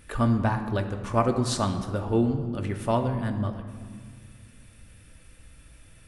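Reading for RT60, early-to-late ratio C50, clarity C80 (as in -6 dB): 1.9 s, 8.5 dB, 10.0 dB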